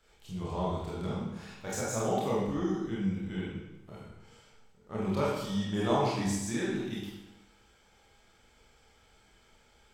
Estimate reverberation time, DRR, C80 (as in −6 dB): 1.0 s, −7.5 dB, 3.0 dB